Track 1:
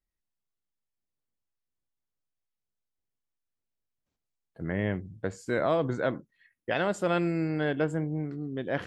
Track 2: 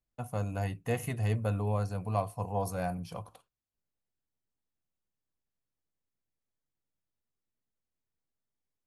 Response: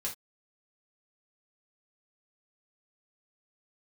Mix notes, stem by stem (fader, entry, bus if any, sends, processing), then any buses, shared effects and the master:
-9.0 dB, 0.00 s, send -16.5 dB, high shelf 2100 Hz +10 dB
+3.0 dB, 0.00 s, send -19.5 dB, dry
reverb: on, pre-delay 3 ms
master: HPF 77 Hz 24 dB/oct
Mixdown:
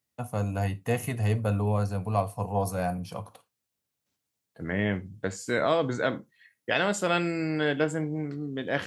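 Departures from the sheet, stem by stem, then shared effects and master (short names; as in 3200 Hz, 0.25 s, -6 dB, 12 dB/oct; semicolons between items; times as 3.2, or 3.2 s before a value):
stem 1 -9.0 dB -> -1.5 dB; reverb return +7.0 dB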